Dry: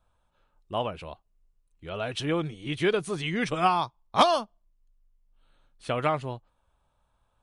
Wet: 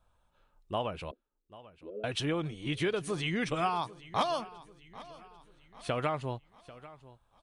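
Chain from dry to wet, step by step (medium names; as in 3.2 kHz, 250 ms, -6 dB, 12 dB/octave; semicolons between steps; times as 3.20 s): 1.11–2.04 s: elliptic band-pass 230–500 Hz, stop band 40 dB; compression 3:1, threshold -29 dBFS, peak gain reduction 11.5 dB; feedback delay 792 ms, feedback 47%, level -18.5 dB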